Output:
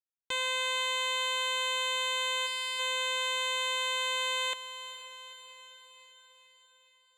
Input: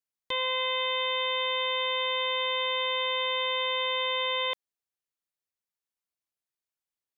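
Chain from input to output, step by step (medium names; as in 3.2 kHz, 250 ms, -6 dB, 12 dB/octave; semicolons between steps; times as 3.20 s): time-frequency box 2.47–2.79 s, 230–1700 Hz -8 dB; power-law waveshaper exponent 2; echo that smears into a reverb 459 ms, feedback 59%, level -12 dB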